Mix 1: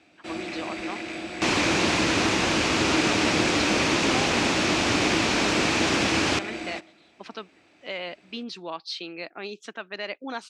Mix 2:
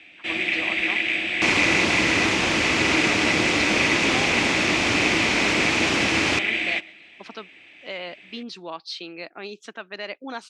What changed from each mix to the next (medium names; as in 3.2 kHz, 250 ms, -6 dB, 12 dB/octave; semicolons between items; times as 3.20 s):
first sound: add high-order bell 2.5 kHz +15.5 dB 1.2 oct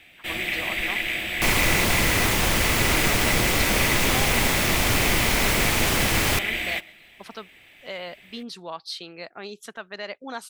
master: remove cabinet simulation 120–6700 Hz, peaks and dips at 130 Hz -5 dB, 310 Hz +8 dB, 2.5 kHz +6 dB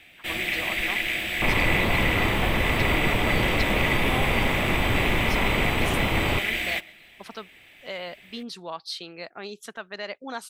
second sound: add low-pass 1.3 kHz 24 dB/octave